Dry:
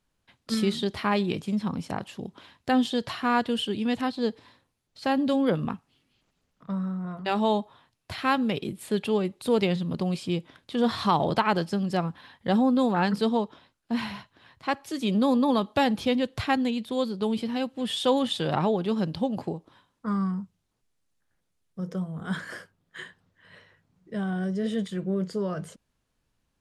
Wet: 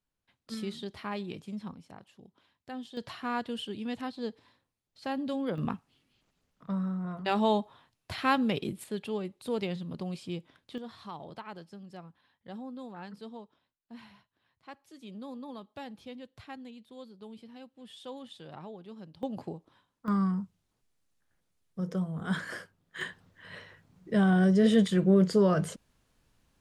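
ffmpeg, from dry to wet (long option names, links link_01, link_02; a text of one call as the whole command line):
ffmpeg -i in.wav -af "asetnsamples=nb_out_samples=441:pad=0,asendcmd='1.73 volume volume -18dB;2.97 volume volume -9dB;5.58 volume volume -2dB;8.84 volume volume -9dB;10.78 volume volume -20dB;19.23 volume volume -7.5dB;20.08 volume volume -0.5dB;23.01 volume volume 6dB',volume=-11.5dB" out.wav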